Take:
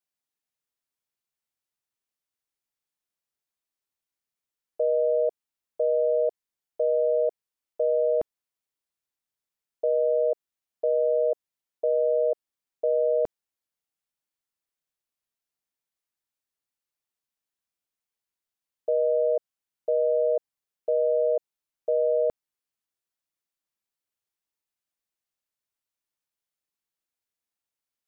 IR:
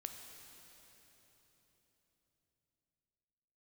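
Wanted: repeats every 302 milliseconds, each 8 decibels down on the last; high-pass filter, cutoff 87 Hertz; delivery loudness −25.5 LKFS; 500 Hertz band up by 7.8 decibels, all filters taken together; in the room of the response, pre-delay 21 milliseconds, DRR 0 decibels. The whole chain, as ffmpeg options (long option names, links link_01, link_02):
-filter_complex "[0:a]highpass=87,equalizer=frequency=500:width_type=o:gain=9,aecho=1:1:302|604|906|1208|1510:0.398|0.159|0.0637|0.0255|0.0102,asplit=2[link_01][link_02];[1:a]atrim=start_sample=2205,adelay=21[link_03];[link_02][link_03]afir=irnorm=-1:irlink=0,volume=3dB[link_04];[link_01][link_04]amix=inputs=2:normalize=0,volume=-15dB"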